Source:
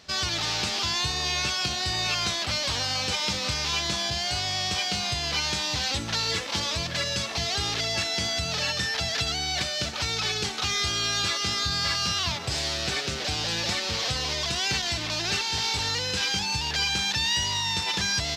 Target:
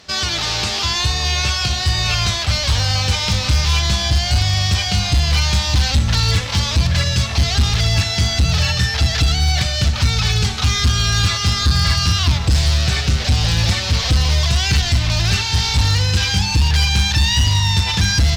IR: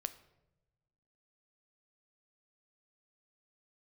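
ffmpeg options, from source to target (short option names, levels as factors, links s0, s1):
-filter_complex "[0:a]asubboost=boost=11.5:cutoff=96[s0];[1:a]atrim=start_sample=2205,asetrate=34839,aresample=44100[s1];[s0][s1]afir=irnorm=-1:irlink=0,volume=7.08,asoftclip=hard,volume=0.141,volume=2.37"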